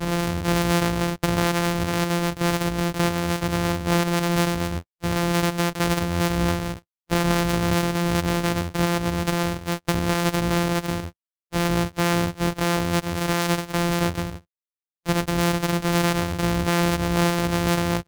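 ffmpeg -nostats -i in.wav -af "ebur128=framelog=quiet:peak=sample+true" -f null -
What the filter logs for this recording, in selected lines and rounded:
Integrated loudness:
  I:         -23.3 LUFS
  Threshold: -33.4 LUFS
Loudness range:
  LRA:         1.4 LU
  Threshold: -43.7 LUFS
  LRA low:   -24.5 LUFS
  LRA high:  -23.0 LUFS
Sample peak:
  Peak:       -6.8 dBFS
True peak:
  Peak:       -6.1 dBFS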